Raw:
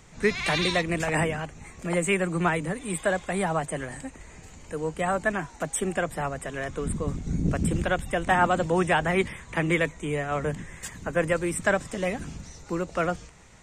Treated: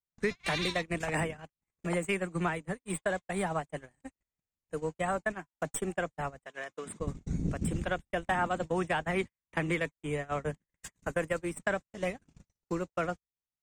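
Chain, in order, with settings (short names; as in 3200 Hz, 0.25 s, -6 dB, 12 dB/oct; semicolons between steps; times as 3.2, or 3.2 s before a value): tracing distortion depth 0.021 ms; 10.92–11.37 high shelf 5400 Hz -> 11000 Hz +12 dB; compressor 3:1, threshold -40 dBFS, peak gain reduction 17 dB; gate -38 dBFS, range -59 dB; 6.46–7 weighting filter A; gain +7.5 dB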